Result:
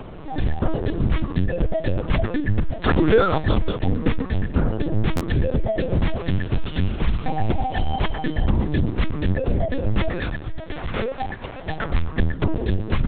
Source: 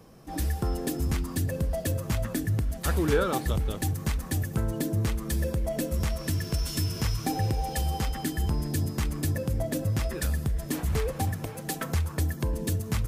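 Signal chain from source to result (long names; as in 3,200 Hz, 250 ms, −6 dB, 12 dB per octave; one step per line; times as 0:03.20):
0:10.23–0:11.67: parametric band 130 Hz −12.5 dB 2.5 octaves
upward compression, threshold −35 dBFS
linear-prediction vocoder at 8 kHz pitch kept
0:03.85–0:04.25: hollow resonant body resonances 260/460 Hz, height 12 dB
buffer that repeats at 0:05.16, samples 512, times 3
level +8 dB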